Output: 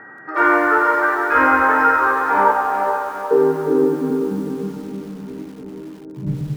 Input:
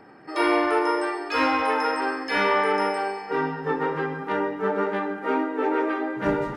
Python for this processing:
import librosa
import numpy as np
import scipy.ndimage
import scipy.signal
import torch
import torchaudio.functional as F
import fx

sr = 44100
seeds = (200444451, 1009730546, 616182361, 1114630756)

p1 = fx.low_shelf(x, sr, hz=140.0, db=10.0, at=(0.94, 1.63))
p2 = fx.ellip_bandstop(p1, sr, low_hz=260.0, high_hz=4200.0, order=3, stop_db=40, at=(4.1, 4.77))
p3 = np.clip(p2, -10.0 ** (-19.5 / 20.0), 10.0 ** (-19.5 / 20.0))
p4 = p2 + F.gain(torch.from_numpy(p3), -8.5).numpy()
p5 = p4 + 10.0 ** (-43.0 / 20.0) * np.sin(2.0 * np.pi * 1900.0 * np.arange(len(p4)) / sr)
p6 = fx.vowel_filter(p5, sr, vowel='a', at=(2.51, 3.31))
p7 = fx.filter_sweep_lowpass(p6, sr, from_hz=1500.0, to_hz=150.0, start_s=1.85, end_s=4.77, q=5.1)
p8 = p7 + fx.echo_diffused(p7, sr, ms=458, feedback_pct=48, wet_db=-7.0, dry=0)
p9 = fx.echo_crushed(p8, sr, ms=94, feedback_pct=55, bits=6, wet_db=-10.0)
y = F.gain(torch.from_numpy(p9), -1.0).numpy()